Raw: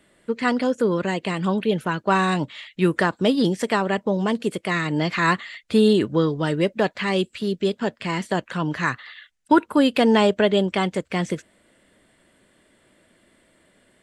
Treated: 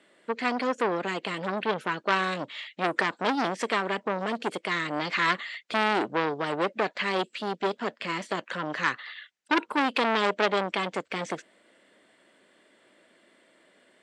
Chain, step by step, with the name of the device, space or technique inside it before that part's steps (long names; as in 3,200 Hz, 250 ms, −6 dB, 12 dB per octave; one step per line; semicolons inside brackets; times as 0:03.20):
public-address speaker with an overloaded transformer (saturating transformer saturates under 2,000 Hz; band-pass filter 300–6,500 Hz)